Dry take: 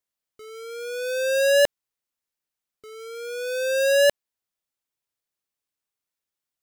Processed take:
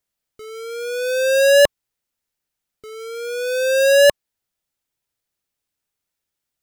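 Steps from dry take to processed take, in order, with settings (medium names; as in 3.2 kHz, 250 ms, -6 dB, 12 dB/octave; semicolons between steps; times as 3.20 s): bass shelf 160 Hz +7 dB; band-stop 1.1 kHz, Q 14; trim +5.5 dB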